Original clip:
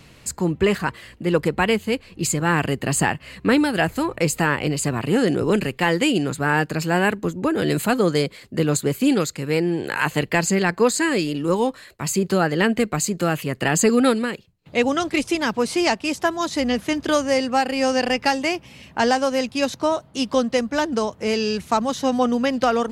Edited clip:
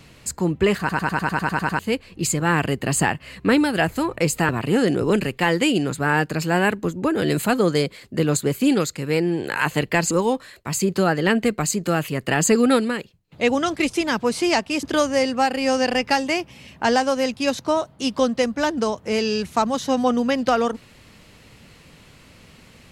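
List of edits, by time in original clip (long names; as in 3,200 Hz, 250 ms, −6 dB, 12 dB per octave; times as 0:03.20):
0:00.79: stutter in place 0.10 s, 10 plays
0:04.49–0:04.89: remove
0:10.51–0:11.45: remove
0:16.17–0:16.98: remove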